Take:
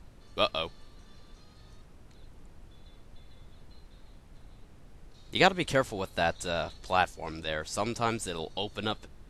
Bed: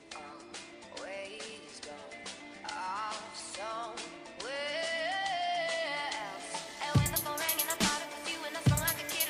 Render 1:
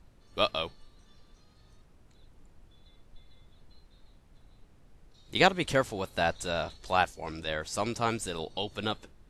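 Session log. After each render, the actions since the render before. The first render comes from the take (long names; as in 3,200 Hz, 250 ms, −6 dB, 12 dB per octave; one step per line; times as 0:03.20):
noise reduction from a noise print 6 dB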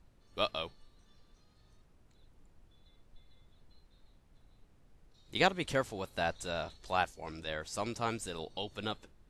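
level −5.5 dB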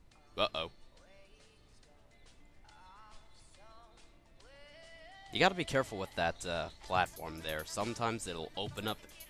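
mix in bed −21 dB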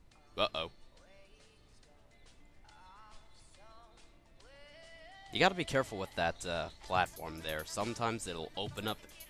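no processing that can be heard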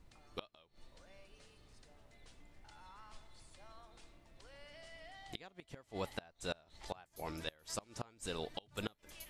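gate with flip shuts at −26 dBFS, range −28 dB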